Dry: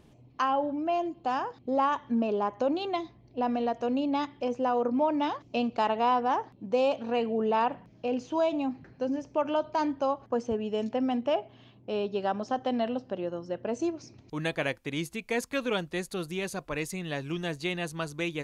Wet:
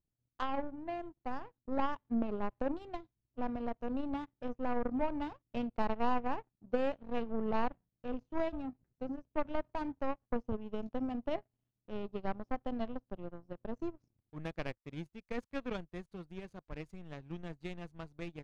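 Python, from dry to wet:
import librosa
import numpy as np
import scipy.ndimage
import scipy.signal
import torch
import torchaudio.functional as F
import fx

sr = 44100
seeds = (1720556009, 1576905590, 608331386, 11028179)

y = fx.power_curve(x, sr, exponent=2.0)
y = fx.riaa(y, sr, side='playback')
y = y * librosa.db_to_amplitude(-5.0)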